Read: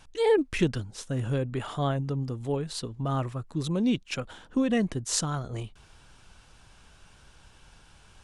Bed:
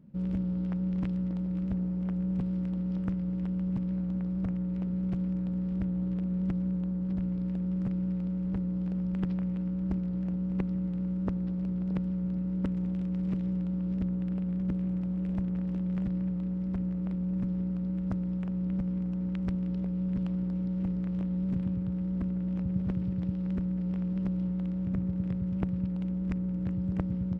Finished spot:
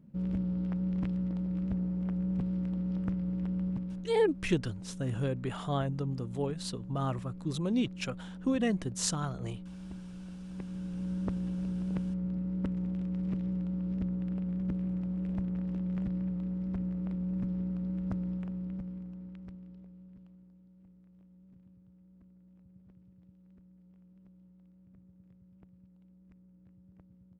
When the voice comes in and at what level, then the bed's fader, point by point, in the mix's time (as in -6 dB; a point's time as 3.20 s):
3.90 s, -4.0 dB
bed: 3.66 s -1.5 dB
4.17 s -13 dB
10.43 s -13 dB
11.13 s -2.5 dB
18.28 s -2.5 dB
20.61 s -28 dB